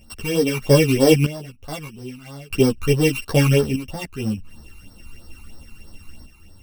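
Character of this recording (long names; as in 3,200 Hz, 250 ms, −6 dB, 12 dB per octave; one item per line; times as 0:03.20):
a buzz of ramps at a fixed pitch in blocks of 16 samples
phaser sweep stages 12, 3.1 Hz, lowest notch 540–2,600 Hz
sample-and-hold tremolo 1.6 Hz, depth 90%
a shimmering, thickened sound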